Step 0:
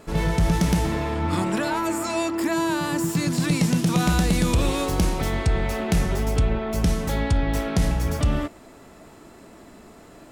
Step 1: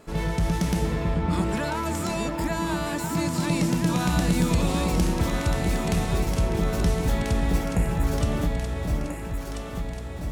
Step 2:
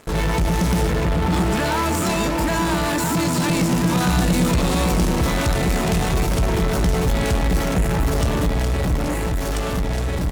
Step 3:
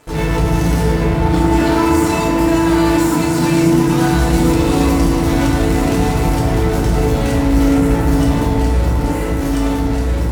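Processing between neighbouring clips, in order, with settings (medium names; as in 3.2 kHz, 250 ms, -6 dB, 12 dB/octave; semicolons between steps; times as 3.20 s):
spectral selection erased 7.66–8.04 s, 2.9–6.7 kHz; echo whose repeats swap between lows and highs 669 ms, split 820 Hz, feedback 72%, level -2 dB; trim -4 dB
in parallel at -7.5 dB: fuzz box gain 40 dB, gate -46 dBFS; on the sum: doubling 16 ms -13 dB; trim -2 dB
FDN reverb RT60 1.4 s, low-frequency decay 1.2×, high-frequency decay 0.45×, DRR -5.5 dB; trim -4 dB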